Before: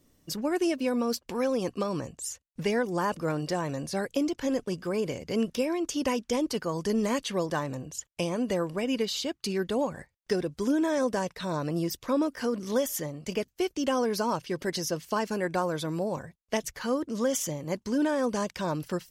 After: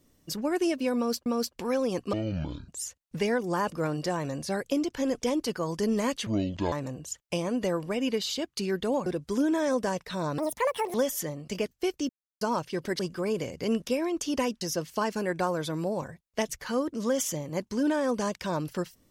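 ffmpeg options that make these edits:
ffmpeg -i in.wav -filter_complex "[0:a]asplit=14[link_01][link_02][link_03][link_04][link_05][link_06][link_07][link_08][link_09][link_10][link_11][link_12][link_13][link_14];[link_01]atrim=end=1.262[link_15];[link_02]atrim=start=0.958:end=1.834[link_16];[link_03]atrim=start=1.83:end=2.13,asetpts=PTS-STARTPTS,asetrate=23814,aresample=44100[link_17];[link_04]atrim=start=2.126:end=4.672[link_18];[link_05]atrim=start=6.288:end=7.334[link_19];[link_06]atrim=start=7.33:end=7.59,asetpts=PTS-STARTPTS,asetrate=25137,aresample=44100[link_20];[link_07]atrim=start=7.586:end=9.932[link_21];[link_08]atrim=start=10.358:end=11.684[link_22];[link_09]atrim=start=11.68:end=12.71,asetpts=PTS-STARTPTS,asetrate=81144,aresample=44100,atrim=end_sample=24686,asetpts=PTS-STARTPTS[link_23];[link_10]atrim=start=12.706:end=13.86,asetpts=PTS-STARTPTS,afade=type=out:start_time=1.15:duration=0.004:curve=hsin[link_24];[link_11]atrim=start=13.86:end=14.18,asetpts=PTS-STARTPTS,volume=0[link_25];[link_12]atrim=start=14.18:end=14.762,asetpts=PTS-STARTPTS,afade=type=in:duration=0.004:curve=hsin[link_26];[link_13]atrim=start=4.668:end=6.292[link_27];[link_14]atrim=start=14.758[link_28];[link_15][link_16]acrossfade=duration=0.004:curve1=hsin:curve2=hsin[link_29];[link_29][link_17]acrossfade=duration=0.004:curve1=hsin:curve2=hsin[link_30];[link_30][link_18]acrossfade=duration=0.004:curve1=hsin:curve2=hsin[link_31];[link_31][link_19]acrossfade=duration=0.004:curve1=hsin:curve2=hsin[link_32];[link_32][link_20]acrossfade=duration=0.004:curve1=hsin:curve2=hsin[link_33];[link_33][link_21]acrossfade=duration=0.004:curve1=hsin:curve2=hsin[link_34];[link_34][link_22]acrossfade=duration=0.004:curve1=hsin:curve2=hsin[link_35];[link_35][link_23]acrossfade=duration=0.004:curve1=hsin:curve2=hsin[link_36];[link_24][link_25][link_26]concat=n=3:v=0:a=1[link_37];[link_36][link_37]acrossfade=duration=0.004:curve1=hsin:curve2=hsin[link_38];[link_38][link_27]acrossfade=duration=0.004:curve1=hsin:curve2=hsin[link_39];[link_39][link_28]acrossfade=duration=0.004:curve1=hsin:curve2=hsin" out.wav

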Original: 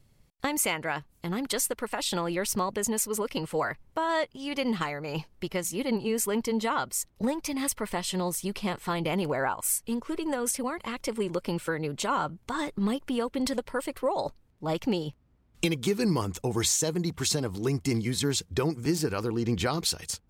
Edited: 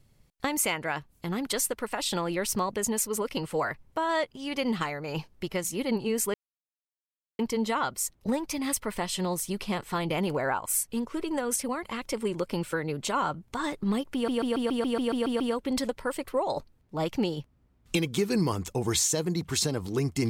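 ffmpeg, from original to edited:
ffmpeg -i in.wav -filter_complex "[0:a]asplit=11[link_01][link_02][link_03][link_04][link_05][link_06][link_07][link_08][link_09][link_10][link_11];[link_01]atrim=end=6.34,asetpts=PTS-STARTPTS,afade=type=out:start_time=6.336:duration=0.004:curve=hsin,apad=pad_dur=1.05[link_12];[link_02]atrim=start=6.34:end=13.232,asetpts=PTS-STARTPTS,afade=type=in:duration=0.004:curve=hsin[link_13];[link_03]atrim=start=13.088:end=13.232[link_14];[link_04]atrim=start=13.088:end=13.232[link_15];[link_05]atrim=start=13.088:end=13.232[link_16];[link_06]atrim=start=13.088:end=13.232[link_17];[link_07]atrim=start=13.088:end=13.232[link_18];[link_08]atrim=start=13.088:end=13.232[link_19];[link_09]atrim=start=13.088:end=13.232[link_20];[link_10]atrim=start=13.088:end=13.232[link_21];[link_11]atrim=start=13.088[link_22];[link_12][link_13]concat=n=2:v=0:a=1[link_23];[link_23][link_14]acrossfade=duration=0.004:curve1=hsin:curve2=hsin[link_24];[link_24][link_15]acrossfade=duration=0.004:curve1=hsin:curve2=hsin[link_25];[link_25][link_16]acrossfade=duration=0.004:curve1=hsin:curve2=hsin[link_26];[link_26][link_17]acrossfade=duration=0.004:curve1=hsin:curve2=hsin[link_27];[link_27][link_18]acrossfade=duration=0.004:curve1=hsin:curve2=hsin[link_28];[link_28][link_19]acrossfade=duration=0.004:curve1=hsin:curve2=hsin[link_29];[link_29][link_20]acrossfade=duration=0.004:curve1=hsin:curve2=hsin[link_30];[link_30][link_21]acrossfade=duration=0.004:curve1=hsin:curve2=hsin[link_31];[link_31][link_22]acrossfade=duration=0.004:curve1=hsin:curve2=hsin" out.wav

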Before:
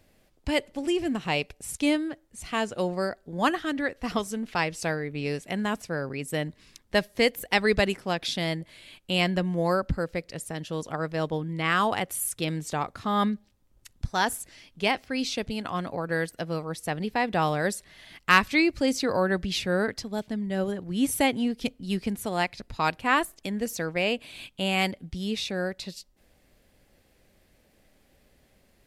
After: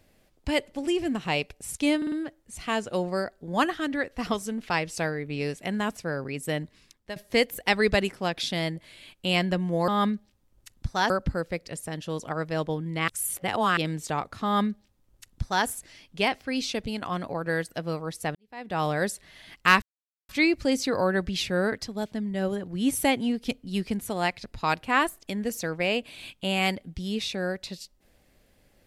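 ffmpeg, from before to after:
ffmpeg -i in.wav -filter_complex "[0:a]asplit=11[link_01][link_02][link_03][link_04][link_05][link_06][link_07][link_08][link_09][link_10][link_11];[link_01]atrim=end=2.022[link_12];[link_02]atrim=start=1.968:end=2.022[link_13];[link_03]atrim=start=1.968:end=2.022[link_14];[link_04]atrim=start=1.968:end=7.01,asetpts=PTS-STARTPTS,afade=type=out:start_time=4.492:duration=0.55:silence=0.141254[link_15];[link_05]atrim=start=7.01:end=9.732,asetpts=PTS-STARTPTS,afade=type=in:duration=0.004:curve=hsin:silence=0.141254[link_16];[link_06]atrim=start=13.068:end=14.292[link_17];[link_07]atrim=start=9.728:end=11.712[link_18];[link_08]atrim=start=11.708:end=12.402,asetpts=PTS-STARTPTS,areverse[link_19];[link_09]atrim=start=12.398:end=16.98,asetpts=PTS-STARTPTS,afade=type=out:start_time=4.578:duration=0.004:curve=hsin[link_20];[link_10]atrim=start=16.98:end=18.45,asetpts=PTS-STARTPTS,afade=type=in:duration=0.52:curve=qua,afade=type=out:start_time=1.466:duration=0.004:curve=hsin,apad=pad_dur=0.47[link_21];[link_11]atrim=start=18.45,asetpts=PTS-STARTPTS,afade=type=in:duration=0.004:curve=hsin[link_22];[link_12][link_13]acrossfade=duration=0.004:curve1=hsin:curve2=hsin[link_23];[link_23][link_14]acrossfade=duration=0.004:curve1=hsin:curve2=hsin[link_24];[link_15][link_16]concat=n=2:v=0:a=1[link_25];[link_24][link_25]acrossfade=duration=0.004:curve1=hsin:curve2=hsin[link_26];[link_26][link_17]acrossfade=duration=0.004:curve1=hsin:curve2=hsin[link_27];[link_27][link_18]acrossfade=duration=0.004:curve1=hsin:curve2=hsin[link_28];[link_28][link_19]acrossfade=duration=0.004:curve1=hsin:curve2=hsin[link_29];[link_20][link_21][link_22]concat=n=3:v=0:a=1[link_30];[link_29][link_30]acrossfade=duration=0.004:curve1=hsin:curve2=hsin" out.wav

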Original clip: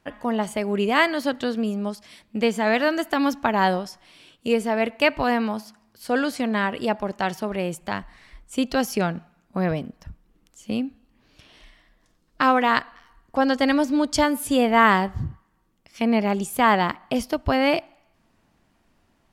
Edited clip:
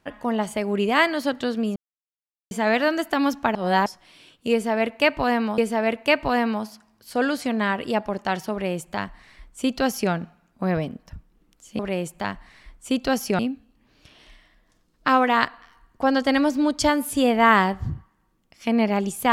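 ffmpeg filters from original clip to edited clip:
ffmpeg -i in.wav -filter_complex "[0:a]asplit=8[link_01][link_02][link_03][link_04][link_05][link_06][link_07][link_08];[link_01]atrim=end=1.76,asetpts=PTS-STARTPTS,afade=type=out:start_time=1.756:duration=0.004:curve=hsin[link_09];[link_02]atrim=start=1.76:end=2.51,asetpts=PTS-STARTPTS,volume=0[link_10];[link_03]atrim=start=2.51:end=3.552,asetpts=PTS-STARTPTS,afade=type=in:duration=0.004:curve=hsin[link_11];[link_04]atrim=start=3.548:end=3.862,asetpts=PTS-STARTPTS,areverse[link_12];[link_05]atrim=start=3.858:end=5.582[link_13];[link_06]atrim=start=4.518:end=10.732[link_14];[link_07]atrim=start=7.458:end=9.062[link_15];[link_08]atrim=start=10.728[link_16];[link_09][link_10][link_11]concat=n=3:v=0:a=1[link_17];[link_17][link_12]acrossfade=duration=0.004:curve1=hsin:curve2=hsin[link_18];[link_18][link_13]acrossfade=duration=0.004:curve1=hsin:curve2=hsin[link_19];[link_19][link_14]acrossfade=duration=0.004:curve1=hsin:curve2=hsin[link_20];[link_20][link_15]acrossfade=duration=0.004:curve1=hsin:curve2=hsin[link_21];[link_21][link_16]acrossfade=duration=0.004:curve1=hsin:curve2=hsin" out.wav

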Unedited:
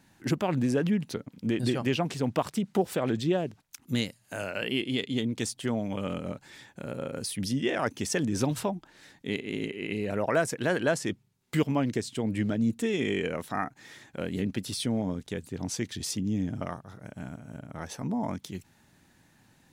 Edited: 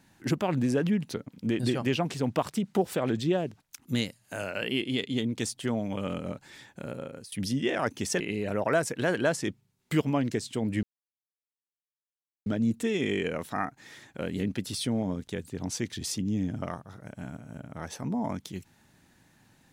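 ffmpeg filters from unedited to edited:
ffmpeg -i in.wav -filter_complex "[0:a]asplit=4[link_01][link_02][link_03][link_04];[link_01]atrim=end=7.32,asetpts=PTS-STARTPTS,afade=type=out:start_time=6.85:duration=0.47:silence=0.11885[link_05];[link_02]atrim=start=7.32:end=8.202,asetpts=PTS-STARTPTS,afade=type=in:duration=0.004:curve=hsin:silence=0.11885[link_06];[link_03]atrim=start=9.818:end=12.45,asetpts=PTS-STARTPTS,afade=type=out:start_time=2.628:duration=0.004:curve=hsin,apad=pad_dur=1.63[link_07];[link_04]atrim=start=12.45,asetpts=PTS-STARTPTS,afade=type=in:duration=0.004:curve=hsin[link_08];[link_05][link_06]concat=n=2:v=0:a=1[link_09];[link_07][link_08]concat=n=2:v=0:a=1[link_10];[link_09][link_10]acrossfade=duration=0.004:curve1=hsin:curve2=hsin" out.wav

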